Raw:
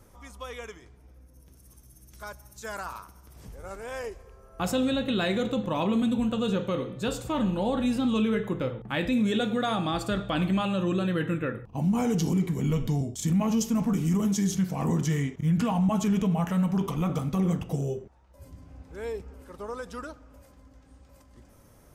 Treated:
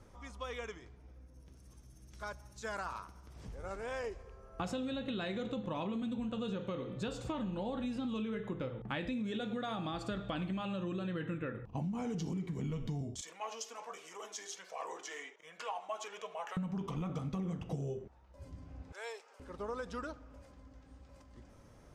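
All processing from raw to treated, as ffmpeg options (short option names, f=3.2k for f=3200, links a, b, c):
-filter_complex "[0:a]asettb=1/sr,asplit=3[a][b][c];[a]atrim=end=13.214[d];[b]atrim=start=13.21:end=16.57,asetpts=PTS-STARTPTS,afade=t=in:d=0.004:c=qsin,afade=t=out:st=3.356:d=0.004:c=qsin,flanger=delay=1.7:depth=1.2:regen=-35:speed=1.3:shape=sinusoidal,highpass=f=540:w=0.5412,highpass=f=540:w=1.3066[e];[c]atrim=start=16.566[f];[d][e]acrossfade=d=0.004:c1=hsin:c2=qsin[g];[g][f]acrossfade=d=0.004:c1=qsin:c2=hsin,asettb=1/sr,asplit=3[h][i][j];[h]atrim=end=18.924[k];[i]atrim=start=18.92:end=19.4,asetpts=PTS-STARTPTS,afade=t=in:d=0.004:c=qsin,afade=t=out:st=0.476:d=0.004:c=qsin,highpass=f=610:w=0.5412,highpass=f=610:w=1.3066,equalizer=f=10k:w=0.34:g=8.5[l];[j]atrim=start=19.396[m];[k][l]acrossfade=d=0.004:c1=hsin:c2=qsin[n];[n][m]acrossfade=d=0.004:c1=qsin:c2=hsin,acompressor=threshold=-32dB:ratio=10,lowpass=6.2k,volume=-2.5dB"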